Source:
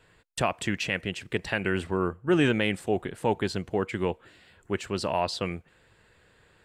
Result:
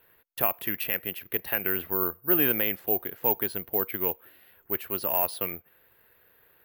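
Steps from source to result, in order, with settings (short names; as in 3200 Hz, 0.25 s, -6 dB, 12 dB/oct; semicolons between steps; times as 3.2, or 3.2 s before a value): tone controls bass -9 dB, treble -10 dB; careless resampling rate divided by 3×, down filtered, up zero stuff; gain -3 dB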